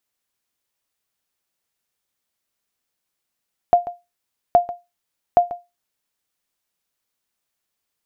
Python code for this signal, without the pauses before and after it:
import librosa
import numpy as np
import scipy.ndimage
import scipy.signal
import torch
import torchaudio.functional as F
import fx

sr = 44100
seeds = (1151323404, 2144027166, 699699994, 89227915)

y = fx.sonar_ping(sr, hz=702.0, decay_s=0.22, every_s=0.82, pings=3, echo_s=0.14, echo_db=-16.0, level_db=-4.5)